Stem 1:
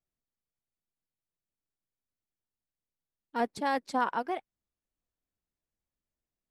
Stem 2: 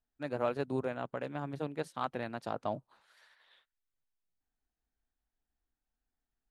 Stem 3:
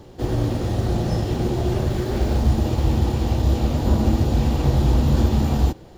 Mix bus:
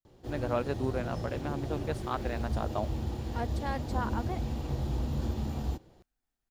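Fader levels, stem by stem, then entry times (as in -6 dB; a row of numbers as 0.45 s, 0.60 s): -6.5 dB, +1.5 dB, -14.5 dB; 0.00 s, 0.10 s, 0.05 s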